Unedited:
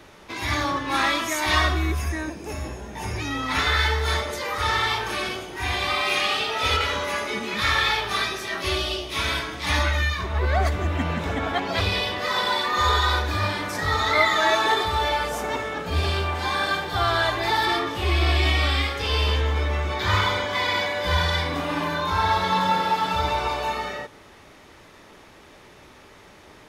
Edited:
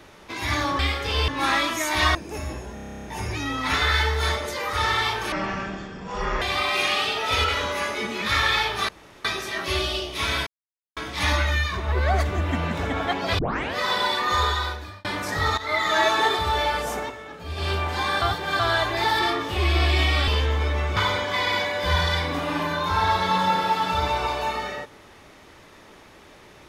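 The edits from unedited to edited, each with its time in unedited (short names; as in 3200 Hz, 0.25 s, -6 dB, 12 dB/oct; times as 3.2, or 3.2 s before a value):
1.66–2.3 cut
2.89 stutter 0.03 s, 11 plays
5.17–5.74 speed 52%
8.21 insert room tone 0.36 s
9.43 insert silence 0.50 s
11.85 tape start 0.36 s
12.75–13.51 fade out
14.04–14.43 fade in, from -15 dB
15.43–16.17 dip -9.5 dB, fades 0.16 s
16.68–17.06 reverse
18.74–19.23 move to 0.79
19.92–20.18 cut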